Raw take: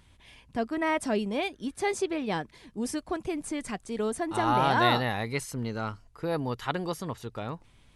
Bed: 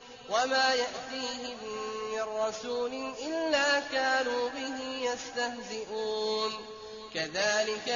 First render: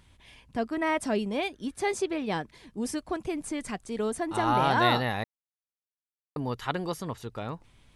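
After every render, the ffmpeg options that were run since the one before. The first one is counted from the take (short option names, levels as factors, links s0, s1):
-filter_complex "[0:a]asplit=3[s0][s1][s2];[s0]atrim=end=5.24,asetpts=PTS-STARTPTS,afade=t=out:st=5.236:d=0.004:c=hsin[s3];[s1]atrim=start=5.24:end=6.36,asetpts=PTS-STARTPTS,volume=0[s4];[s2]atrim=start=6.36,asetpts=PTS-STARTPTS,afade=t=in:d=0.004:c=hsin[s5];[s3][s4][s5]concat=n=3:v=0:a=1"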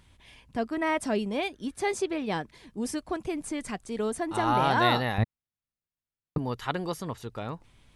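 -filter_complex "[0:a]asettb=1/sr,asplit=3[s0][s1][s2];[s0]atrim=end=5.184[s3];[s1]atrim=start=5.18:end=6.38,asetpts=PTS-STARTPTS,afade=t=in:d=0.004:c=qsin,afade=t=out:st=1.196:d=0.004:c=qsin,bass=f=250:g=15,treble=f=4000:g=-8[s4];[s2]atrim=start=6.376[s5];[s3][s4]acrossfade=d=0.004:c1=hsin:c2=qsin[s6];[s6][s5]acrossfade=d=0.004:c1=qsin:c2=hsin"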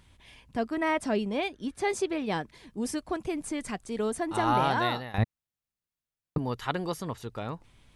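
-filter_complex "[0:a]asettb=1/sr,asplit=3[s0][s1][s2];[s0]atrim=end=0.924[s3];[s1]atrim=start=0.92:end=1.9,asetpts=PTS-STARTPTS,afade=t=in:d=0.004:c=qsin,afade=t=out:st=0.976:d=0.004:c=qsin,highshelf=f=9200:g=-9[s4];[s2]atrim=start=1.896[s5];[s3][s4]acrossfade=d=0.004:c1=hsin:c2=qsin[s6];[s6][s5]acrossfade=d=0.004:c1=qsin:c2=hsin,asplit=2[s7][s8];[s7]atrim=end=5.14,asetpts=PTS-STARTPTS,afade=t=out:st=4.55:d=0.59:silence=0.16788[s9];[s8]atrim=start=5.14,asetpts=PTS-STARTPTS,afade=t=in:d=0.004:c=hsin:silence=0.16788[s10];[s9][s10]concat=n=2:v=0:a=1"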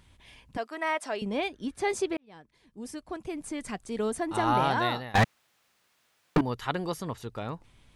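-filter_complex "[0:a]asettb=1/sr,asplit=3[s0][s1][s2];[s0]atrim=end=0.574[s3];[s1]atrim=start=0.57:end=1.22,asetpts=PTS-STARTPTS,afade=t=in:d=0.004:c=qsin,afade=t=out:st=0.646:d=0.004:c=qsin,highpass=590[s4];[s2]atrim=start=1.216[s5];[s3][s4]acrossfade=d=0.004:c1=hsin:c2=qsin[s6];[s6][s5]acrossfade=d=0.004:c1=qsin:c2=hsin,asettb=1/sr,asplit=3[s7][s8][s9];[s7]atrim=end=5.154[s10];[s8]atrim=start=5.15:end=6.41,asetpts=PTS-STARTPTS,afade=t=in:d=0.004:c=qsin,afade=t=out:st=1.256:d=0.004:c=qsin,asplit=2[s11][s12];[s12]highpass=f=720:p=1,volume=63.1,asoftclip=type=tanh:threshold=0.224[s13];[s11][s13]amix=inputs=2:normalize=0,lowpass=f=2700:p=1,volume=0.501[s14];[s9]atrim=start=6.406[s15];[s10][s14]acrossfade=d=0.004:c1=hsin:c2=qsin[s16];[s16][s15]acrossfade=d=0.004:c1=qsin:c2=hsin,asplit=2[s17][s18];[s17]atrim=end=2.17,asetpts=PTS-STARTPTS,afade=t=out:st=2.166:d=0.004:c=hsin[s19];[s18]atrim=start=2.17,asetpts=PTS-STARTPTS,afade=t=in:d=1.79[s20];[s19][s20]concat=n=2:v=0:a=1"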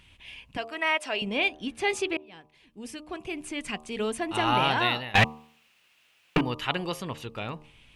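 -af "equalizer=f=2700:w=2.1:g=14,bandreject=f=76.05:t=h:w=4,bandreject=f=152.1:t=h:w=4,bandreject=f=228.15:t=h:w=4,bandreject=f=304.2:t=h:w=4,bandreject=f=380.25:t=h:w=4,bandreject=f=456.3:t=h:w=4,bandreject=f=532.35:t=h:w=4,bandreject=f=608.4:t=h:w=4,bandreject=f=684.45:t=h:w=4,bandreject=f=760.5:t=h:w=4,bandreject=f=836.55:t=h:w=4,bandreject=f=912.6:t=h:w=4,bandreject=f=988.65:t=h:w=4,bandreject=f=1064.7:t=h:w=4,bandreject=f=1140.75:t=h:w=4,bandreject=f=1216.8:t=h:w=4"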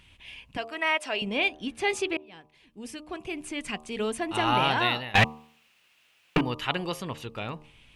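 -af anull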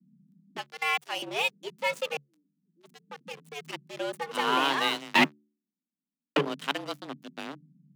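-filter_complex "[0:a]acrossover=split=120[s0][s1];[s1]aeval=exprs='sgn(val(0))*max(abs(val(0))-0.0188,0)':c=same[s2];[s0][s2]amix=inputs=2:normalize=0,afreqshift=140"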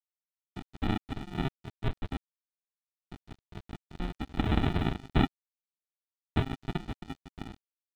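-af "aresample=8000,acrusher=samples=15:mix=1:aa=0.000001,aresample=44100,aeval=exprs='sgn(val(0))*max(abs(val(0))-0.00631,0)':c=same"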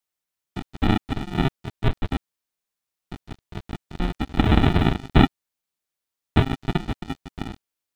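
-af "volume=3.16,alimiter=limit=0.708:level=0:latency=1"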